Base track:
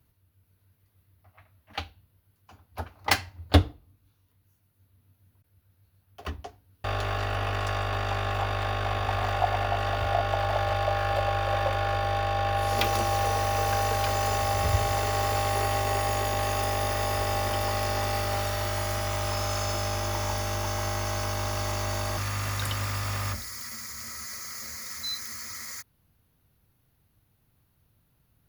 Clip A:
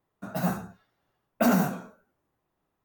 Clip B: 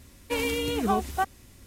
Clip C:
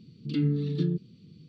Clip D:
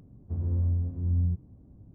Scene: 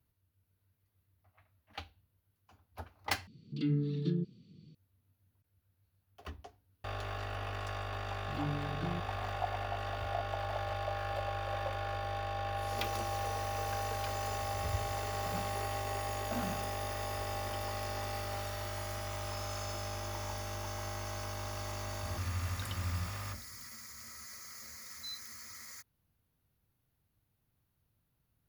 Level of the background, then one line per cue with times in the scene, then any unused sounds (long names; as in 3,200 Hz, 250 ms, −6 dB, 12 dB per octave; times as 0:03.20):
base track −10.5 dB
0:03.27: overwrite with C −5.5 dB
0:08.03: mix in C −12 dB
0:14.90: mix in A −17.5 dB
0:21.73: mix in D −12 dB
not used: B